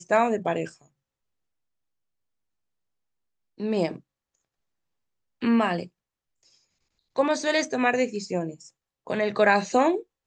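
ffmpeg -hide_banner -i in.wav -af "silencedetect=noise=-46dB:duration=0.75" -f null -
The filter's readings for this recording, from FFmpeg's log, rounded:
silence_start: 0.82
silence_end: 3.58 | silence_duration: 2.76
silence_start: 4.00
silence_end: 5.42 | silence_duration: 1.42
silence_start: 5.87
silence_end: 7.16 | silence_duration: 1.29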